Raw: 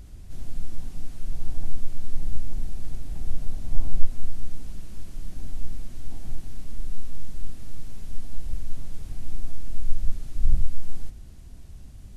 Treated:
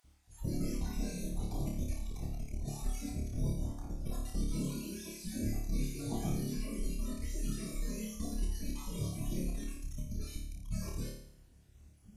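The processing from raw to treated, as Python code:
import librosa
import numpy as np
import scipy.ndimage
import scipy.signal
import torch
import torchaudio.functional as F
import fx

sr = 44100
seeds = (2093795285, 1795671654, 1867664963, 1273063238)

y = fx.spec_dropout(x, sr, seeds[0], share_pct=28)
y = scipy.signal.sosfilt(scipy.signal.butter(2, 45.0, 'highpass', fs=sr, output='sos'), y)
y = fx.noise_reduce_blind(y, sr, reduce_db=24)
y = fx.over_compress(y, sr, threshold_db=-43.0, ratio=-1.0)
y = fx.room_flutter(y, sr, wall_m=4.8, rt60_s=0.66)
y = y * 10.0 ** (4.5 / 20.0)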